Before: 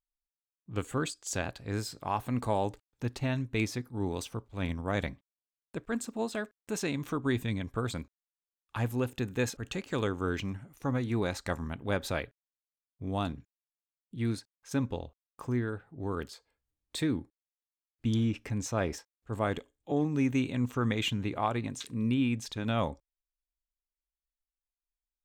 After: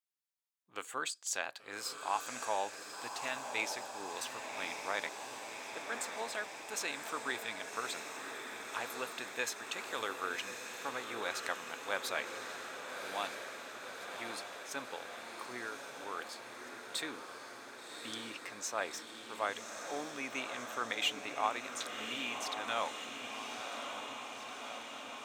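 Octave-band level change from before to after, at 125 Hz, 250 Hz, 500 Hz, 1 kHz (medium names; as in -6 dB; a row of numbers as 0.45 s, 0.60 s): -30.5 dB, -17.5 dB, -7.0 dB, -0.5 dB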